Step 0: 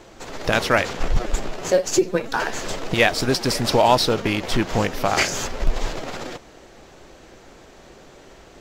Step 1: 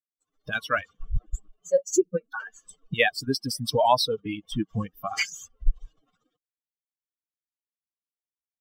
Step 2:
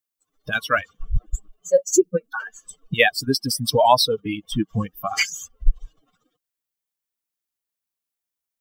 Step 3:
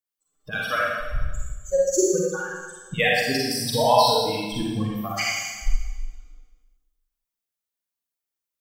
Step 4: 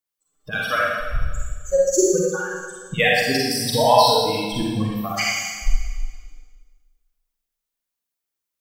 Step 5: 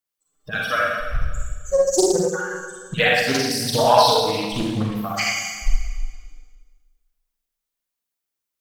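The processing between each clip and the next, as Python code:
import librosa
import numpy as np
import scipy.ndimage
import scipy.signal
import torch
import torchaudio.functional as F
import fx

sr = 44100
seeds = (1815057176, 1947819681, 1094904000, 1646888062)

y1 = fx.bin_expand(x, sr, power=3.0)
y2 = fx.high_shelf(y1, sr, hz=9300.0, db=7.5)
y2 = y2 * 10.0 ** (5.0 / 20.0)
y3 = fx.rev_schroeder(y2, sr, rt60_s=1.3, comb_ms=38, drr_db=-5.0)
y3 = y3 * 10.0 ** (-7.5 / 20.0)
y4 = fx.echo_feedback(y3, sr, ms=290, feedback_pct=37, wet_db=-18)
y4 = y4 * 10.0 ** (3.0 / 20.0)
y5 = fx.doppler_dist(y4, sr, depth_ms=0.38)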